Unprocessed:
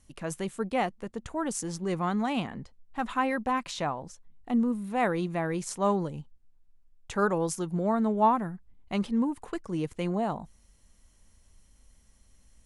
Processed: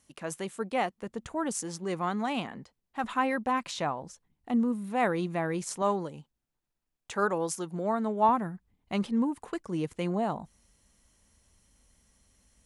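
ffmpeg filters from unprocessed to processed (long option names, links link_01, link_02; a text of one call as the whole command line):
ffmpeg -i in.wav -af "asetnsamples=nb_out_samples=441:pad=0,asendcmd='1.02 highpass f 93;1.61 highpass f 260;3.04 highpass f 110;5.82 highpass f 330;8.29 highpass f 89',highpass=frequency=280:poles=1" out.wav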